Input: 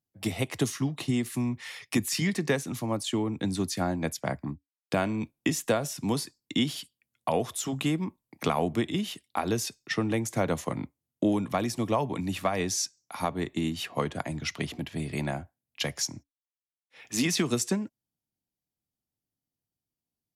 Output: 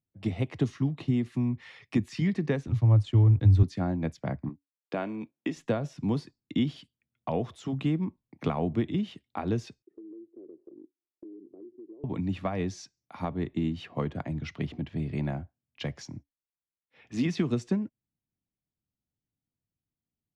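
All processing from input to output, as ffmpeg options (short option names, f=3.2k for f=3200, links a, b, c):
-filter_complex "[0:a]asettb=1/sr,asplit=3[a][b][c];[a]atrim=end=2.674[d];[b]atrim=start=2.67:end=3.63,asetpts=PTS-STARTPTS,afade=t=in:d=0.004:c=qsin,afade=t=out:st=0.956:d=0.004:c=qsin,lowshelf=f=140:t=q:w=3:g=10.5,aeval=exprs='sgn(val(0))*max(abs(val(0))-0.00355,0)':c=same[e];[c]atrim=start=3.626[f];[d][e]acrossfade=d=0.004:c1=hsin:c2=qsin[g];[g][f]acrossfade=d=0.004:c1=qsin:c2=hsin,asettb=1/sr,asplit=3[h][i][j];[h]atrim=end=4.494[k];[i]atrim=start=4.49:end=5.57,asetpts=PTS-STARTPTS,afade=t=in:d=0.004:c=qsin,afade=t=out:st=1.076:d=0.004:c=qsin,highpass=300,highshelf=f=9.8k:g=-6[l];[j]atrim=start=5.566[m];[k][l]acrossfade=d=0.004:c1=hsin:c2=qsin[n];[n][m]acrossfade=d=0.004:c1=qsin:c2=hsin,asettb=1/sr,asplit=3[o][p][q];[o]atrim=end=9.824[r];[p]atrim=start=9.82:end=12.04,asetpts=PTS-STARTPTS,afade=t=in:d=0.004:c=qsin,afade=t=out:st=2.216:d=0.004:c=qsin,asuperpass=centerf=360:order=4:qfactor=4.3,acompressor=threshold=-42dB:ratio=6:attack=3.2:release=140:knee=1:detection=peak[s];[q]atrim=start=12.036[t];[r][s]acrossfade=d=0.004:c1=hsin:c2=qsin[u];[u][t]acrossfade=d=0.004:c1=qsin:c2=hsin,lowpass=3.6k,lowshelf=f=380:g=11.5,volume=-7.5dB"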